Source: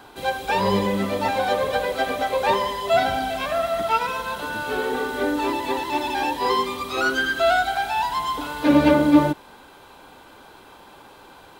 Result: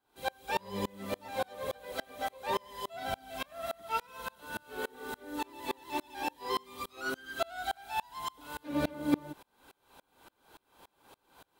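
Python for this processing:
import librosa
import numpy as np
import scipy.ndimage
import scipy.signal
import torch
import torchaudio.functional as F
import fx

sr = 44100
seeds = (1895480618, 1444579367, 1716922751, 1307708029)

y = fx.high_shelf(x, sr, hz=7500.0, db=9.5)
y = fx.tremolo_decay(y, sr, direction='swelling', hz=3.5, depth_db=32)
y = y * librosa.db_to_amplitude(-6.5)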